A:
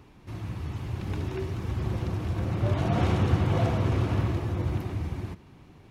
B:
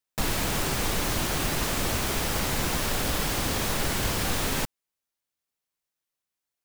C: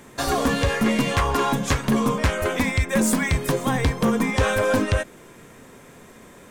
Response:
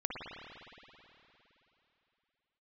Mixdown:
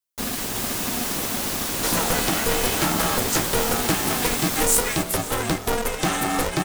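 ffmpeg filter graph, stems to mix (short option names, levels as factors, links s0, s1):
-filter_complex "[1:a]asplit=2[s0][s1];[s1]adelay=10.4,afreqshift=-0.67[s2];[s0][s2]amix=inputs=2:normalize=1,volume=0.891,asplit=2[s3][s4];[s4]volume=0.668[s5];[2:a]equalizer=f=15000:w=0.31:g=6,adelay=1650,volume=0.668[s6];[s5]aecho=0:1:371|742|1113|1484|1855|2226:1|0.41|0.168|0.0689|0.0283|0.0116[s7];[s3][s6][s7]amix=inputs=3:normalize=0,highshelf=f=5100:g=8.5,bandreject=f=2100:w=12,aeval=exprs='val(0)*sgn(sin(2*PI*240*n/s))':c=same"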